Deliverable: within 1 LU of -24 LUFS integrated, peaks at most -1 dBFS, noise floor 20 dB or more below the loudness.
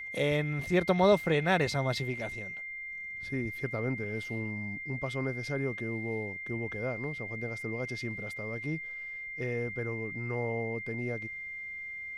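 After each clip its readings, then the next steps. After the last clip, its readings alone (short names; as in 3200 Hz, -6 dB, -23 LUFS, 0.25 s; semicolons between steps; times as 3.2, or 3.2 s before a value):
steady tone 2100 Hz; tone level -38 dBFS; loudness -32.5 LUFS; peak -13.0 dBFS; loudness target -24.0 LUFS
-> notch 2100 Hz, Q 30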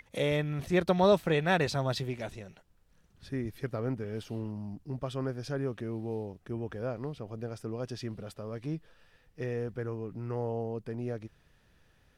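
steady tone none; loudness -33.5 LUFS; peak -13.0 dBFS; loudness target -24.0 LUFS
-> gain +9.5 dB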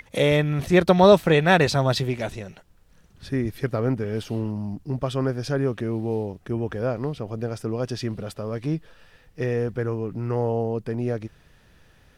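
loudness -24.0 LUFS; peak -3.5 dBFS; noise floor -56 dBFS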